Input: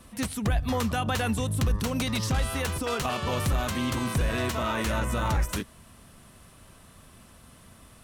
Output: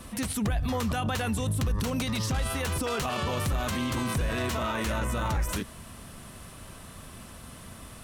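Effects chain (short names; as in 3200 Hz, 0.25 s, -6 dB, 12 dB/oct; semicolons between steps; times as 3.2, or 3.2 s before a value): limiter -28.5 dBFS, peak gain reduction 10 dB; gain +7 dB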